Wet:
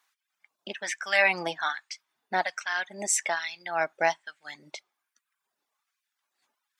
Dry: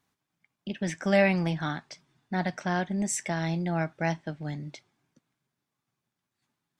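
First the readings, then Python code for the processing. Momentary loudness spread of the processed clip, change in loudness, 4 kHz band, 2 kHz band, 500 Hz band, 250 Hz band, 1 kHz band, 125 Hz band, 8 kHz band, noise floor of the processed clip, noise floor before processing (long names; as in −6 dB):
20 LU, +1.5 dB, +5.5 dB, +6.0 dB, −2.0 dB, −15.5 dB, +3.5 dB, −20.5 dB, +5.5 dB, −85 dBFS, −85 dBFS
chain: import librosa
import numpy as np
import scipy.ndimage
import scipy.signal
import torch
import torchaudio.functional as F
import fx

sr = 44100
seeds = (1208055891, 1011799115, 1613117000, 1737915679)

y = fx.filter_lfo_highpass(x, sr, shape='sine', hz=1.2, low_hz=540.0, high_hz=1600.0, q=1.0)
y = fx.dereverb_blind(y, sr, rt60_s=0.87)
y = y * librosa.db_to_amplitude(6.0)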